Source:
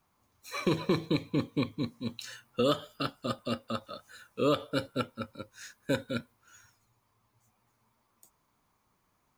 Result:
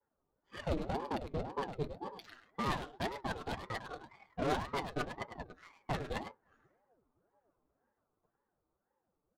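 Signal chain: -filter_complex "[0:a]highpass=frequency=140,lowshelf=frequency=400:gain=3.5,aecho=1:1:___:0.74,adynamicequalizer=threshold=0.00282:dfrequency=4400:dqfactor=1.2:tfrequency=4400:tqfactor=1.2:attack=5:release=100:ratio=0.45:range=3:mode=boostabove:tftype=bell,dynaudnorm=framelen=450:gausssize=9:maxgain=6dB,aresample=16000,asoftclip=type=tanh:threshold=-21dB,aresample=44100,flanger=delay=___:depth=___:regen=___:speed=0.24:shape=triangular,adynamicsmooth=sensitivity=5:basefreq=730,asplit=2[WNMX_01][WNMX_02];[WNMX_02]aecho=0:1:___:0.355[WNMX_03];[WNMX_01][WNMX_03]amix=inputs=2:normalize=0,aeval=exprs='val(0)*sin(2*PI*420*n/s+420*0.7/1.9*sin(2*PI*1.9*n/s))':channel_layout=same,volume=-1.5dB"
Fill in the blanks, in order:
6.6, 3.8, 7.2, 52, 103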